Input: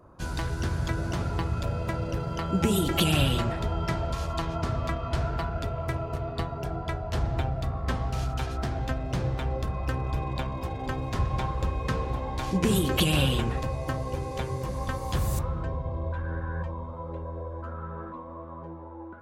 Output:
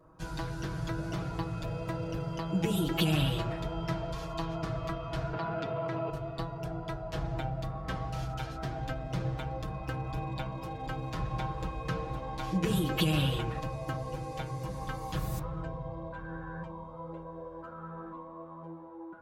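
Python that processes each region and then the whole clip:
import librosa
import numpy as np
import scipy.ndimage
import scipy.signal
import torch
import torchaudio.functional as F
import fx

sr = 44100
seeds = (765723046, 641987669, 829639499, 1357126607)

y = fx.chain(x, sr, fx.bandpass_edges(low_hz=160.0, high_hz=4200.0),
    fx.env_flatten(amount_pct=100), at=(5.33, 6.1))
y = y + 0.94 * np.pad(y, (int(6.3 * sr / 1000.0), 0))[:len(y)]
y = fx.dynamic_eq(y, sr, hz=8500.0, q=1.2, threshold_db=-50.0, ratio=4.0, max_db=-6)
y = F.gain(torch.from_numpy(y), -7.5).numpy()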